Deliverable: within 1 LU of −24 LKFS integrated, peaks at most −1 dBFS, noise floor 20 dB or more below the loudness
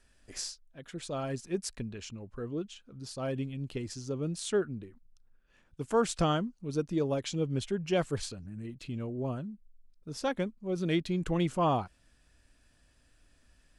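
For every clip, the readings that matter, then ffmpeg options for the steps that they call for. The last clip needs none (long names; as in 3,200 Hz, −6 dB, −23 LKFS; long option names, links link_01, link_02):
integrated loudness −34.0 LKFS; sample peak −16.0 dBFS; target loudness −24.0 LKFS
→ -af "volume=10dB"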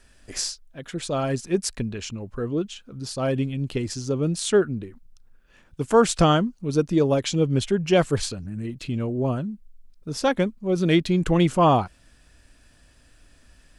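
integrated loudness −24.0 LKFS; sample peak −6.0 dBFS; background noise floor −57 dBFS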